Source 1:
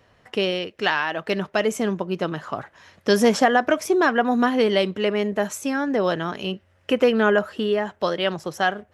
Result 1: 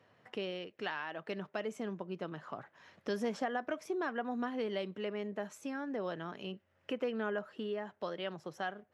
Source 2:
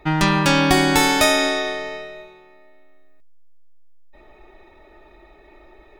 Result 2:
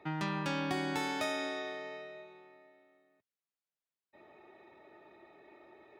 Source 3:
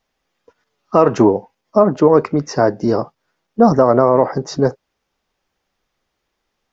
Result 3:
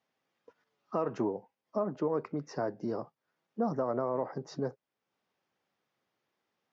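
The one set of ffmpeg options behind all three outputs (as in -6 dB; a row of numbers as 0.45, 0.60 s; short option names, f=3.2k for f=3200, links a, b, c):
-af "highpass=f=110:w=0.5412,highpass=f=110:w=1.3066,highshelf=f=6k:g=-11.5,acompressor=threshold=-43dB:ratio=1.5,volume=-7.5dB"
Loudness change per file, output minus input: -17.0, -19.0, -19.5 LU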